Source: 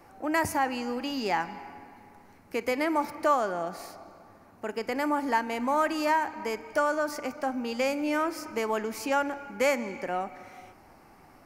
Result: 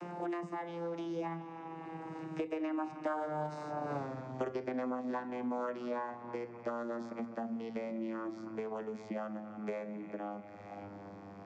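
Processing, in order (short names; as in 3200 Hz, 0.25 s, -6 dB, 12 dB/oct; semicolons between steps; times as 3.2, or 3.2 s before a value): vocoder on a gliding note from E3, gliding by -8 st; Doppler pass-by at 3.99, 21 m/s, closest 1.7 m; on a send at -11 dB: reverb RT60 0.45 s, pre-delay 6 ms; on the sum: three-band squash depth 100%; gain +16 dB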